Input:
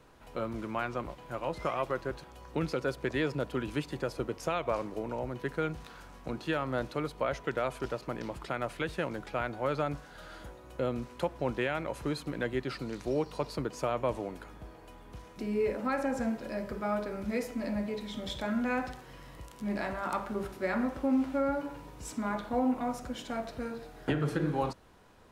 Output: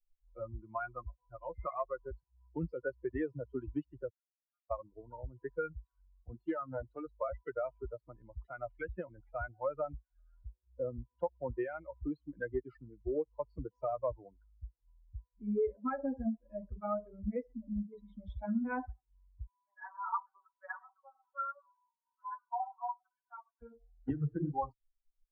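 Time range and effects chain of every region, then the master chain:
0:04.09–0:04.71: downward compressor 5 to 1, threshold −38 dBFS + resonant band-pass 1,700 Hz, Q 6.1 + comb filter 4.3 ms, depth 80%
0:06.21–0:07.06: mains-hum notches 50/100/150/200/250 Hz + highs frequency-modulated by the lows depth 0.18 ms
0:17.53–0:17.93: variable-slope delta modulation 32 kbit/s + low-pass filter 1,200 Hz 24 dB per octave + parametric band 560 Hz −6.5 dB 1.4 octaves
0:19.47–0:23.62: flat-topped band-pass 1,200 Hz, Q 1.4 + comb filter 5.3 ms, depth 95%
whole clip: spectral dynamics exaggerated over time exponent 3; low-pass filter 1,400 Hz 24 dB per octave; downward compressor 2 to 1, threshold −43 dBFS; level +8 dB

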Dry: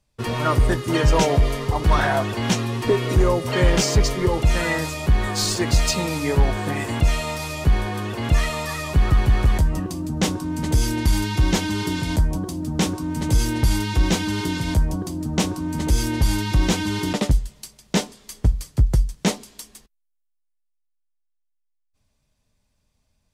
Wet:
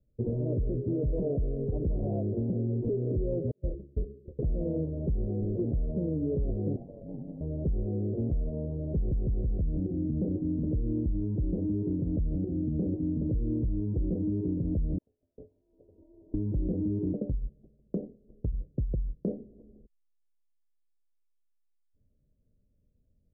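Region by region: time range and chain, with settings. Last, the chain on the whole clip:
0:03.51–0:04.39: noise gate −14 dBFS, range −45 dB + hum removal 69.65 Hz, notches 8 + micro pitch shift up and down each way 58 cents
0:06.76–0:07.41: voice inversion scrambler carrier 2,700 Hz + ring modulation 49 Hz
0:14.98–0:16.34: high-frequency loss of the air 250 metres + tuned comb filter 83 Hz, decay 0.24 s, harmonics odd, mix 80% + voice inversion scrambler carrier 2,500 Hz
0:17.13–0:19.28: mu-law and A-law mismatch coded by A + downward compressor, threshold −23 dBFS
whole clip: Butterworth low-pass 550 Hz 48 dB per octave; brickwall limiter −18 dBFS; downward compressor 2.5 to 1, threshold −28 dBFS

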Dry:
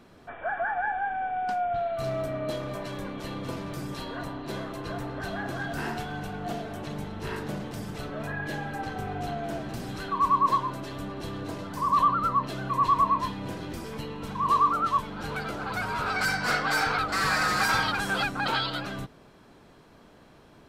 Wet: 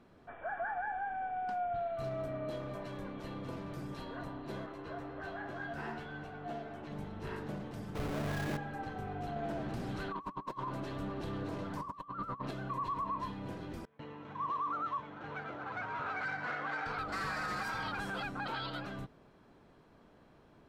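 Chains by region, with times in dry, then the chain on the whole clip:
0:04.66–0:06.92: low-pass filter 3,300 Hz 6 dB per octave + low-shelf EQ 320 Hz −8 dB + double-tracking delay 13 ms −4 dB
0:07.95–0:08.57: each half-wave held at its own peak + envelope flattener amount 50%
0:09.36–0:12.51: compressor whose output falls as the input rises −30 dBFS, ratio −0.5 + highs frequency-modulated by the lows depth 0.16 ms
0:13.85–0:16.86: running median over 9 samples + noise gate with hold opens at −27 dBFS, closes at −35 dBFS + loudspeaker in its box 140–5,500 Hz, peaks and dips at 200 Hz −10 dB, 410 Hz −5 dB, 1,900 Hz +3 dB, 4,800 Hz −7 dB
whole clip: high-shelf EQ 3,300 Hz −9.5 dB; brickwall limiter −22.5 dBFS; level −7 dB

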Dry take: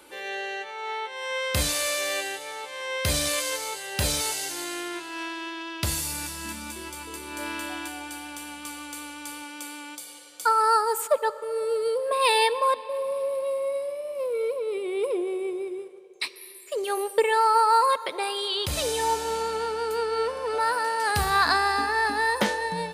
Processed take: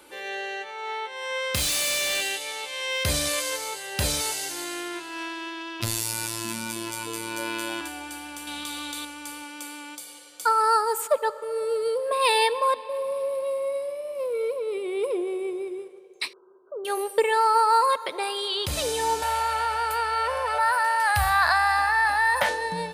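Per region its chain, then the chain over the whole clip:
0:01.55–0:03.04: high shelf with overshoot 2,000 Hz +6 dB, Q 1.5 + hard clipping −23 dBFS
0:05.80–0:07.81: phases set to zero 113 Hz + envelope flattener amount 50%
0:08.47–0:09.05: parametric band 3,700 Hz +13.5 dB 0.32 octaves + envelope flattener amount 70%
0:16.33–0:16.85: low-shelf EQ 190 Hz −6 dB + downward compressor 1.5 to 1, threshold −39 dBFS + linear-phase brick-wall low-pass 1,600 Hz
0:19.22–0:22.49: drawn EQ curve 120 Hz 0 dB, 190 Hz −20 dB, 400 Hz −25 dB, 580 Hz +2 dB, 1,200 Hz −1 dB, 1,800 Hz +2 dB, 3,700 Hz −4 dB, 6,500 Hz −8 dB, 11,000 Hz 0 dB + envelope flattener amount 50%
whole clip: no processing

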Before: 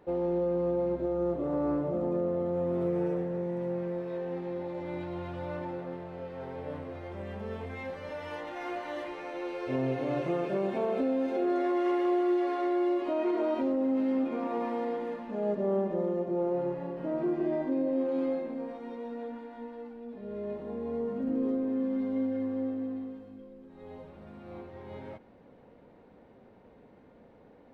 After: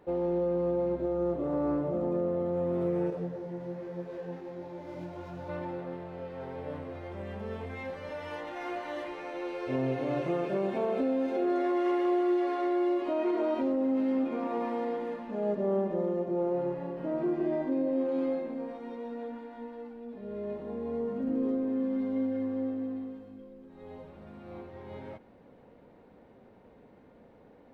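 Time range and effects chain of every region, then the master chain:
0:03.10–0:05.49: running median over 15 samples + comb filter 7 ms, depth 30% + micro pitch shift up and down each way 33 cents
whole clip: no processing

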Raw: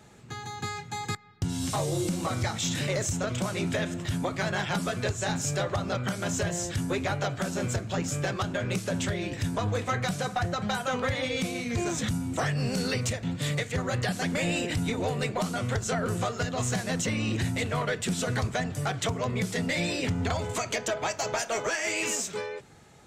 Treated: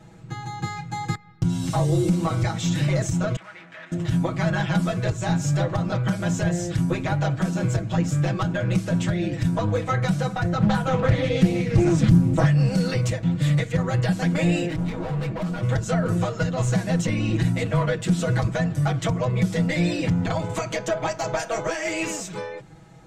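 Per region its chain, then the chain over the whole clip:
0:03.36–0:03.92: hard clipping −32.5 dBFS + resonant band-pass 1,800 Hz, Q 1.9
0:10.55–0:12.46: low-shelf EQ 310 Hz +8.5 dB + highs frequency-modulated by the lows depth 0.47 ms
0:14.68–0:15.63: low-pass filter 3,300 Hz 6 dB per octave + hard clipping −32 dBFS
whole clip: spectral tilt −2 dB per octave; notch filter 440 Hz, Q 12; comb filter 6.2 ms, depth 96%

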